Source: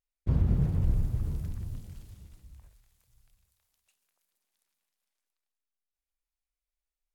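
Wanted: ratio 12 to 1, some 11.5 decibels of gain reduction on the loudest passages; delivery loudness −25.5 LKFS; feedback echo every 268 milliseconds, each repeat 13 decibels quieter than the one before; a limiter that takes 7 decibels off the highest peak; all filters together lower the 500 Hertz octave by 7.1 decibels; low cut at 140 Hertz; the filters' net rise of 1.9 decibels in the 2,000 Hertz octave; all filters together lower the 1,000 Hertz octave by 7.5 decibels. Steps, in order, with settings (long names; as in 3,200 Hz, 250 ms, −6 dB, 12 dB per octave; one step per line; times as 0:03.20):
high-pass filter 140 Hz
parametric band 500 Hz −8 dB
parametric band 1,000 Hz −8.5 dB
parametric band 2,000 Hz +5.5 dB
downward compressor 12 to 1, threshold −39 dBFS
brickwall limiter −38.5 dBFS
repeating echo 268 ms, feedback 22%, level −13 dB
level +23 dB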